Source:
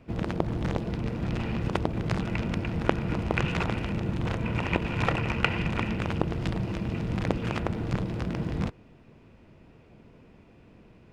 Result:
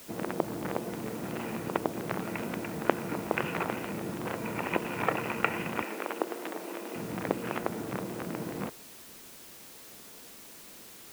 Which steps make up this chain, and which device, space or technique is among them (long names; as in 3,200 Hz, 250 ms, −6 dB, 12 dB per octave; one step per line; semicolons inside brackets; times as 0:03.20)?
wax cylinder (band-pass filter 270–2,200 Hz; tape wow and flutter; white noise bed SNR 15 dB)
0:05.82–0:06.96: high-pass filter 290 Hz 24 dB per octave